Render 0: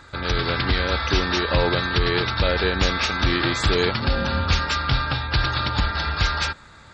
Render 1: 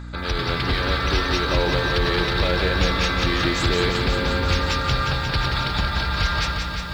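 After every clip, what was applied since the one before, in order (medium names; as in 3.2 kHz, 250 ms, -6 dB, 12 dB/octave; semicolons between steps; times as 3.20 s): hum 60 Hz, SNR 12 dB; in parallel at -10 dB: overload inside the chain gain 25.5 dB; on the sum: bit-crushed delay 178 ms, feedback 80%, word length 8-bit, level -6 dB; trim -3 dB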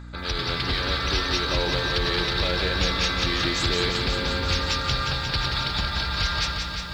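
dynamic bell 4.9 kHz, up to +7 dB, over -41 dBFS, Q 0.76; trim -5 dB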